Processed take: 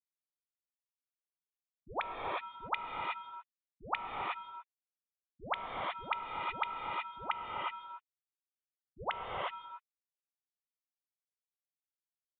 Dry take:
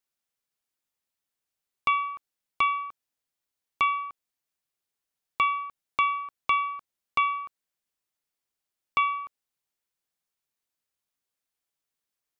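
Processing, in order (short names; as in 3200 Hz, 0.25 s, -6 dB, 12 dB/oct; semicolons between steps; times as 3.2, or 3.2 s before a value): recorder AGC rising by 7.5 dB/s; treble ducked by the level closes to 530 Hz, closed at -24.5 dBFS; resonant low shelf 160 Hz -10 dB, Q 1.5; level quantiser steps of 14 dB; bit-crush 9-bit; dispersion highs, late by 0.144 s, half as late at 410 Hz; ring modulator 190 Hz; non-linear reverb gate 0.4 s rising, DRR -1 dB; downsampling 8000 Hz; gain +1 dB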